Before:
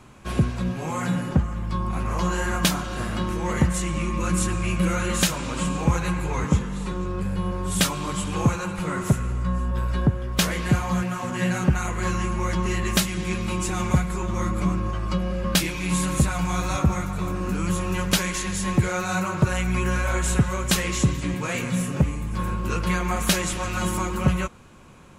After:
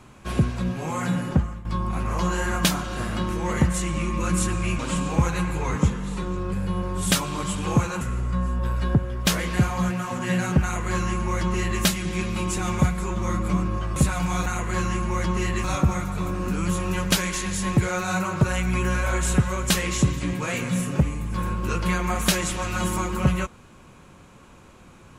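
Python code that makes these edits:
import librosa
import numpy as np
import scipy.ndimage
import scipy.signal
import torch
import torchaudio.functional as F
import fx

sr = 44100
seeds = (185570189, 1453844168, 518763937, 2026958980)

y = fx.edit(x, sr, fx.fade_out_to(start_s=1.32, length_s=0.33, curve='qsin', floor_db=-15.0),
    fx.cut(start_s=4.79, length_s=0.69),
    fx.cut(start_s=8.7, length_s=0.43),
    fx.duplicate(start_s=11.75, length_s=1.18, to_s=16.65),
    fx.cut(start_s=15.08, length_s=1.07), tone=tone)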